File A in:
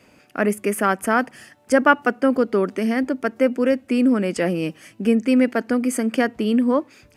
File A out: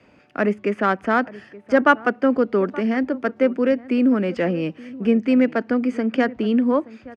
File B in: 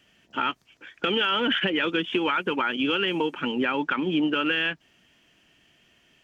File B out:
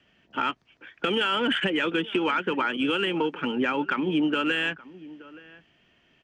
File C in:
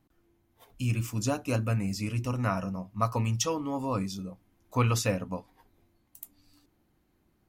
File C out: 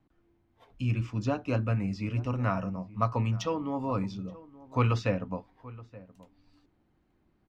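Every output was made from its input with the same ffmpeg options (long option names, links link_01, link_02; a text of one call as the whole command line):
ffmpeg -i in.wav -filter_complex "[0:a]asplit=2[link_01][link_02];[link_02]adelay=874.6,volume=-19dB,highshelf=frequency=4000:gain=-19.7[link_03];[link_01][link_03]amix=inputs=2:normalize=0,acrossover=split=320|850|5900[link_04][link_05][link_06][link_07];[link_07]acompressor=threshold=-57dB:ratio=6[link_08];[link_04][link_05][link_06][link_08]amix=inputs=4:normalize=0,equalizer=frequency=7900:width=1.1:gain=-2,adynamicsmooth=sensitivity=1:basefreq=4400" out.wav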